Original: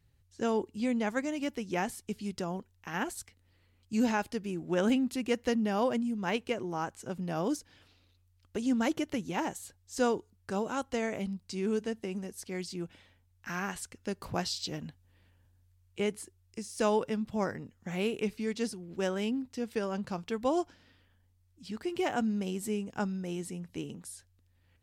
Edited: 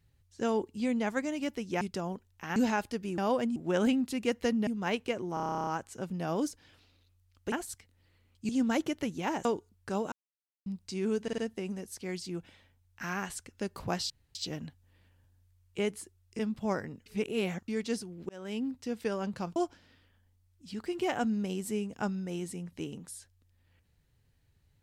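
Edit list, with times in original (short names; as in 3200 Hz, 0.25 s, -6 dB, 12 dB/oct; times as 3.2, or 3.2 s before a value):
1.81–2.25 cut
3–3.97 move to 8.6
5.7–6.08 move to 4.59
6.75 stutter 0.03 s, 12 plays
9.56–10.06 cut
10.73–11.27 mute
11.84 stutter 0.05 s, 4 plays
14.56 insert room tone 0.25 s
16.6–17.1 cut
17.77–18.39 reverse
19–19.39 fade in linear
20.27–20.53 cut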